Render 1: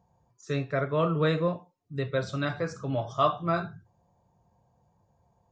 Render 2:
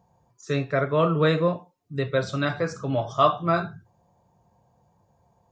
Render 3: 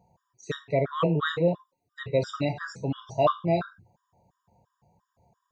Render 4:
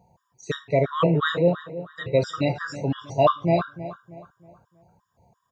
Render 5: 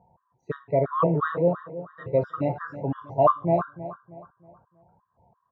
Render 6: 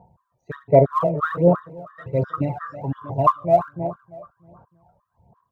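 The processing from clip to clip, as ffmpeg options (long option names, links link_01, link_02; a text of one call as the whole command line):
ffmpeg -i in.wav -af "lowshelf=frequency=87:gain=-6,volume=5dB" out.wav
ffmpeg -i in.wav -af "afftfilt=real='re*gt(sin(2*PI*2.9*pts/sr)*(1-2*mod(floor(b*sr/1024/960),2)),0)':imag='im*gt(sin(2*PI*2.9*pts/sr)*(1-2*mod(floor(b*sr/1024/960),2)),0)':win_size=1024:overlap=0.75" out.wav
ffmpeg -i in.wav -filter_complex "[0:a]asplit=2[link_01][link_02];[link_02]adelay=318,lowpass=frequency=2400:poles=1,volume=-14dB,asplit=2[link_03][link_04];[link_04]adelay=318,lowpass=frequency=2400:poles=1,volume=0.39,asplit=2[link_05][link_06];[link_06]adelay=318,lowpass=frequency=2400:poles=1,volume=0.39,asplit=2[link_07][link_08];[link_08]adelay=318,lowpass=frequency=2400:poles=1,volume=0.39[link_09];[link_01][link_03][link_05][link_07][link_09]amix=inputs=5:normalize=0,volume=4dB" out.wav
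ffmpeg -i in.wav -af "lowpass=frequency=1100:width_type=q:width=1.8,volume=-3.5dB" out.wav
ffmpeg -i in.wav -af "aphaser=in_gain=1:out_gain=1:delay=1.7:decay=0.68:speed=1.3:type=sinusoidal" out.wav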